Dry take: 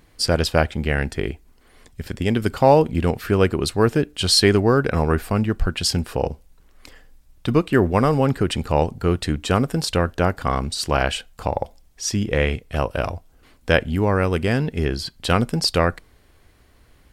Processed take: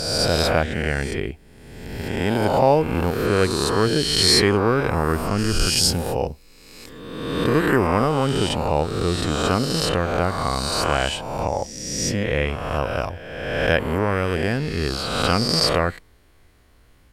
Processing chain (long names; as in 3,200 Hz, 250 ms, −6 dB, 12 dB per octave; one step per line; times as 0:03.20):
peak hold with a rise ahead of every peak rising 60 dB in 1.44 s
0:05.38–0:07.87: high-shelf EQ 7,000 Hz +8 dB
level −4 dB